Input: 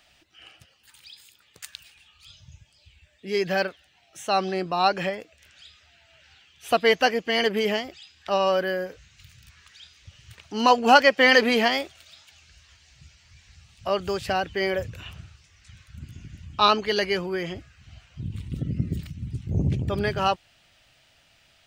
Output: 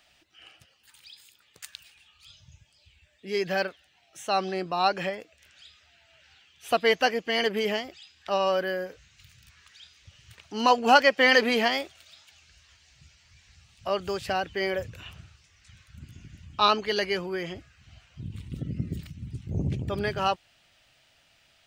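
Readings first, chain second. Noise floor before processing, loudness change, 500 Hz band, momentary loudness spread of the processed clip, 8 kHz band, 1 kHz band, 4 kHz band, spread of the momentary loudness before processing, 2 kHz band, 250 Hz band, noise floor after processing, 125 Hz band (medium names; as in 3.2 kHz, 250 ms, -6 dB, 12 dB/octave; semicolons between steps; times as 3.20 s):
-61 dBFS, -2.5 dB, -3.0 dB, 21 LU, -2.5 dB, -2.5 dB, -2.5 dB, 21 LU, -2.5 dB, -4.0 dB, -64 dBFS, -5.0 dB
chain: bass shelf 180 Hz -3.5 dB; trim -2.5 dB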